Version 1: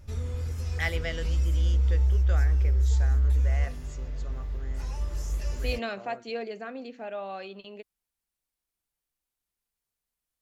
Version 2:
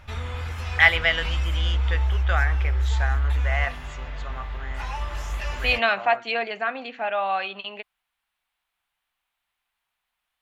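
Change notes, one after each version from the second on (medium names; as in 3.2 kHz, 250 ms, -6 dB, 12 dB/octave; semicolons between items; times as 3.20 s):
master: add high-order bell 1.6 kHz +15.5 dB 2.8 oct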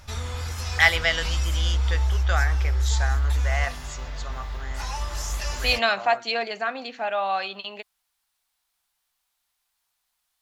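master: add resonant high shelf 3.8 kHz +10 dB, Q 1.5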